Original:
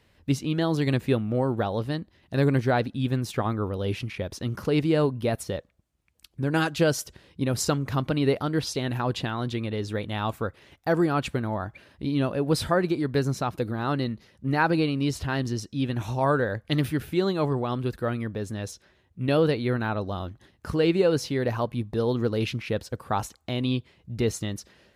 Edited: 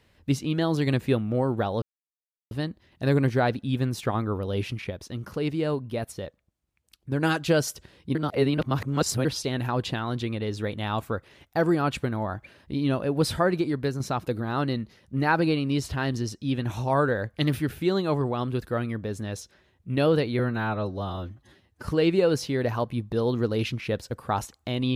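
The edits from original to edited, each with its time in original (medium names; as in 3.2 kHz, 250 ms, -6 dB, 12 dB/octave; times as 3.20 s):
1.82 s: insert silence 0.69 s
4.21–6.43 s: gain -4.5 dB
7.46–8.56 s: reverse
13.01–13.31 s: fade out linear, to -6.5 dB
19.70–20.69 s: stretch 1.5×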